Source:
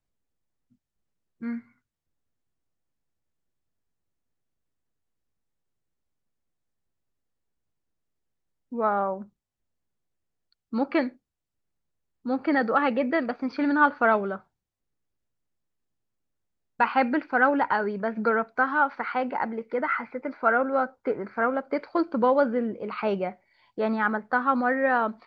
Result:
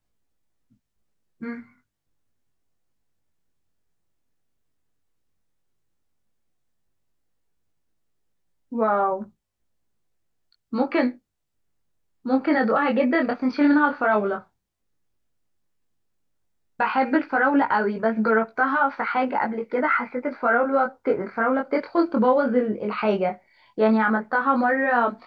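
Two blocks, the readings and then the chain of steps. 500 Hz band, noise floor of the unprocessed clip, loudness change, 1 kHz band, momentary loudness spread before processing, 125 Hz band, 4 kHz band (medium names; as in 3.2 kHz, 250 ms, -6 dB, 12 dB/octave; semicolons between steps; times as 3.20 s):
+3.5 dB, -84 dBFS, +3.5 dB, +2.5 dB, 12 LU, no reading, +3.5 dB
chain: peak limiter -16.5 dBFS, peak gain reduction 8.5 dB; chorus 0.11 Hz, delay 18 ms, depth 5.8 ms; trim +8.5 dB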